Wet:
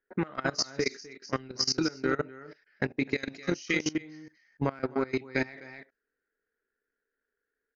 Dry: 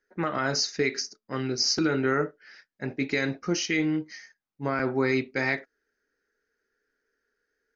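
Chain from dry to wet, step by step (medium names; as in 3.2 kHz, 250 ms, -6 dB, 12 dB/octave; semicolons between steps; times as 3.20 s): delay 253 ms -6.5 dB; transient shaper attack +12 dB, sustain -1 dB; 3.18–3.93 s: treble shelf 3.6 kHz +11 dB; in parallel at +1.5 dB: compression 8:1, threshold -28 dBFS, peak gain reduction 16.5 dB; on the sum: level-controlled noise filter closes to 2.6 kHz, open at -16 dBFS; level held to a coarse grid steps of 20 dB; trim -6 dB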